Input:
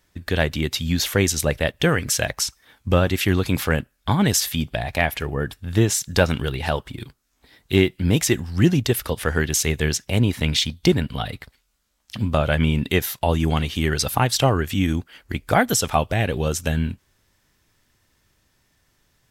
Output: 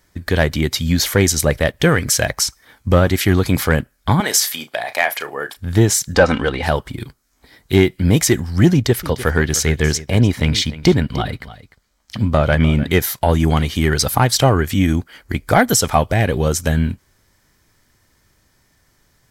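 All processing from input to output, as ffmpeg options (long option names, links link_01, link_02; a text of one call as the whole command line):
ffmpeg -i in.wav -filter_complex "[0:a]asettb=1/sr,asplit=3[link_01][link_02][link_03];[link_01]atrim=end=4.204[link_04];[link_02]atrim=start=4.2:end=5.57,asetpts=PTS-STARTPTS,afade=type=in:duration=0.004:curve=qsin,afade=type=out:start_time=1.366:duration=0.004:curve=qsin,highpass=570,asplit=2[link_05][link_06];[link_06]adelay=34,volume=-11.5dB[link_07];[link_05][link_07]amix=inputs=2:normalize=0,atrim=end_sample=60417[link_08];[link_03]atrim=start=5.566[link_09];[link_04][link_08]acrossfade=duration=0.004:curve1=hsin:curve2=qsin[link_10];[link_10][link_09]acrossfade=duration=0.004:curve1=qsin:curve2=hsin,asettb=1/sr,asplit=3[link_11][link_12][link_13];[link_11]atrim=end=6.144[link_14];[link_12]atrim=start=6.14:end=6.63,asetpts=PTS-STARTPTS,afade=type=in:duration=0.004:curve=qsin,afade=type=out:start_time=0.486:duration=0.004:curve=qsin,lowpass=frequency=9600:width=0.5412,lowpass=frequency=9600:width=1.3066,aecho=1:1:3.9:0.43,atrim=end_sample=21609,asplit=2[link_15][link_16];[link_16]highpass=frequency=720:poles=1,volume=14dB,asoftclip=type=tanh:threshold=-4dB[link_17];[link_15][link_17]amix=inputs=2:normalize=0,lowpass=frequency=1400:poles=1,volume=-6dB[link_18];[link_13]atrim=start=6.626[link_19];[link_14][link_18]acrossfade=duration=0.004:curve1=hsin:curve2=qsin[link_20];[link_20][link_19]acrossfade=duration=0.004:curve1=qsin:curve2=hsin,asettb=1/sr,asplit=3[link_21][link_22][link_23];[link_21]atrim=end=8.734[link_24];[link_22]atrim=start=8.73:end=12.93,asetpts=PTS-STARTPTS,afade=type=in:duration=0.004:curve=qsin,afade=type=out:start_time=4.196:duration=0.004:curve=qsin,equalizer=frequency=12000:width_type=o:width=1.2:gain=-6.5,aecho=1:1:300:0.15,atrim=end_sample=185220[link_25];[link_23]atrim=start=12.926[link_26];[link_24][link_25]acrossfade=duration=0.004:curve1=hsin:curve2=qsin[link_27];[link_27][link_26]acrossfade=duration=0.004:curve1=qsin:curve2=hsin,equalizer=frequency=3500:width=6.5:gain=-5.5,acontrast=49,bandreject=frequency=2700:width=7.8" out.wav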